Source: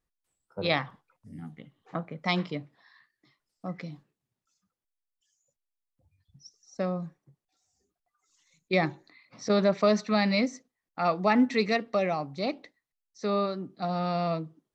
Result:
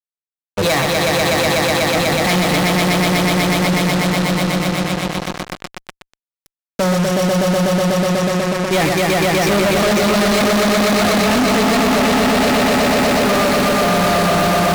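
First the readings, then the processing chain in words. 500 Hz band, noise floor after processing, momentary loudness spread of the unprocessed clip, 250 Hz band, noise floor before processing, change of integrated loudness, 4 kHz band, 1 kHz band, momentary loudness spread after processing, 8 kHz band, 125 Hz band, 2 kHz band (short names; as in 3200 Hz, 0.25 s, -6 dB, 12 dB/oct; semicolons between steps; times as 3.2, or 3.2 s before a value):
+14.5 dB, under -85 dBFS, 20 LU, +15.0 dB, under -85 dBFS, +13.5 dB, +19.5 dB, +15.5 dB, 5 LU, n/a, +17.5 dB, +18.0 dB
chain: swelling echo 0.123 s, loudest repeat 5, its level -4 dB; fuzz box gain 46 dB, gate -38 dBFS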